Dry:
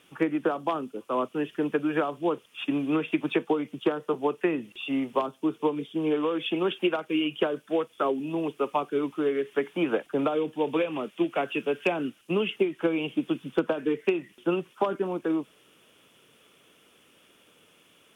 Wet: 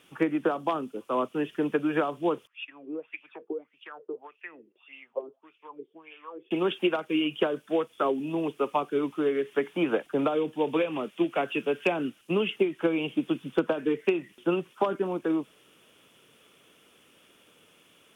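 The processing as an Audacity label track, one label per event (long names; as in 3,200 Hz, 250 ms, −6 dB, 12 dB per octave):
2.470000	6.510000	LFO wah 1.7 Hz 360–2,700 Hz, Q 7.3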